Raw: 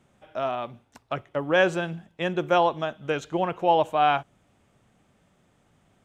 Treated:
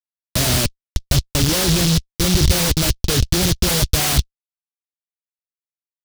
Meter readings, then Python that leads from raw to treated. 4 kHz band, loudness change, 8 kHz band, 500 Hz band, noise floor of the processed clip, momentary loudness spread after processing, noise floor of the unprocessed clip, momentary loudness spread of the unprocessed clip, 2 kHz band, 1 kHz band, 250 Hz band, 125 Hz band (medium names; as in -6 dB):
+17.0 dB, +8.0 dB, no reading, -2.0 dB, under -85 dBFS, 5 LU, -66 dBFS, 12 LU, +3.0 dB, -6.0 dB, +10.0 dB, +18.5 dB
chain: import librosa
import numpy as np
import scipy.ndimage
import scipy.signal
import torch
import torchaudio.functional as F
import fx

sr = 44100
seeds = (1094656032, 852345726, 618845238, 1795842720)

p1 = fx.rider(x, sr, range_db=4, speed_s=0.5)
p2 = x + (p1 * librosa.db_to_amplitude(-1.5))
p3 = fx.low_shelf(p2, sr, hz=370.0, db=5.5)
p4 = fx.schmitt(p3, sr, flips_db=-24.0)
p5 = fx.peak_eq(p4, sr, hz=63.0, db=13.0, octaves=2.1)
p6 = fx.noise_mod_delay(p5, sr, seeds[0], noise_hz=4300.0, depth_ms=0.36)
y = p6 * librosa.db_to_amplitude(1.5)